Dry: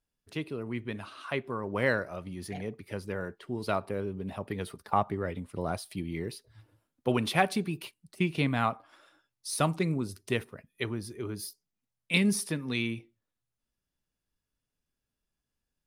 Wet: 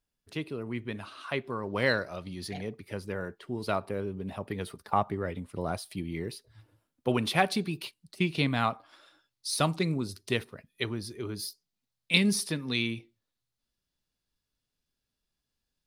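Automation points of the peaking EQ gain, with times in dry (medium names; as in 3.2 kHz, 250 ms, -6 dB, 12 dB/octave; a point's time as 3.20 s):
peaking EQ 4.2 kHz 0.78 oct
1.21 s +2 dB
1.78 s +12 dB
2.40 s +12 dB
2.87 s +1.5 dB
7.23 s +1.5 dB
7.64 s +8 dB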